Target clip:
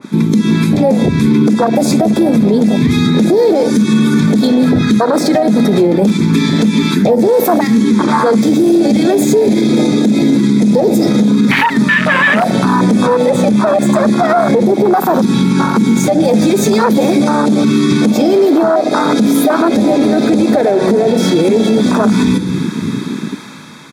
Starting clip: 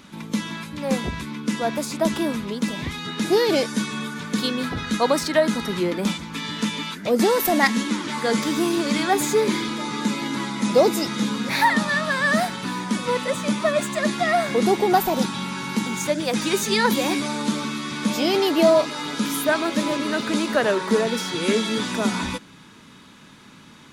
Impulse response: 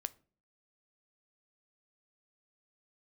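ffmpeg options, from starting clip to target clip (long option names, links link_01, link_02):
-filter_complex "[0:a]aecho=1:1:65|130|195|260|325:0.112|0.0662|0.0391|0.023|0.0136,dynaudnorm=framelen=100:gausssize=21:maxgain=14.5dB[link_01];[1:a]atrim=start_sample=2205,asetrate=35721,aresample=44100[link_02];[link_01][link_02]afir=irnorm=-1:irlink=0,aeval=exprs='clip(val(0),-1,0.133)':channel_layout=same,asettb=1/sr,asplit=3[link_03][link_04][link_05];[link_03]atrim=end=8.414[link_06];[link_04]atrim=start=8.41:end=11.01,asetpts=PTS-STARTPTS,afade=type=in:duration=0.004:curve=qsin,afade=type=out:start_time=2.596:duration=0.004:curve=qsin,equalizer=frequency=1000:width_type=o:width=1.5:gain=-8[link_07];[link_05]atrim=start=11.006[link_08];[link_06][link_07]acrossfade=duration=0.004:curve1=hsin:curve2=qsin[link_09];[link_09][link_08]acrossfade=duration=0.004:curve1=qsin:curve2=hsin,acompressor=threshold=-27dB:ratio=16,asuperstop=centerf=2900:order=8:qfactor=6.9,afwtdn=0.0398,highpass=frequency=110:width=0.5412,highpass=frequency=110:width=1.3066,bandreject=frequency=60:width_type=h:width=6,bandreject=frequency=120:width_type=h:width=6,bandreject=frequency=180:width_type=h:width=6,bandreject=frequency=240:width_type=h:width=6,bandreject=frequency=300:width_type=h:width=6,alimiter=level_in=30dB:limit=-1dB:release=50:level=0:latency=1,adynamicequalizer=threshold=0.0708:dfrequency=1800:dqfactor=0.7:tfrequency=1800:tqfactor=0.7:attack=5:release=100:ratio=0.375:range=1.5:mode=boostabove:tftype=highshelf,volume=-2.5dB"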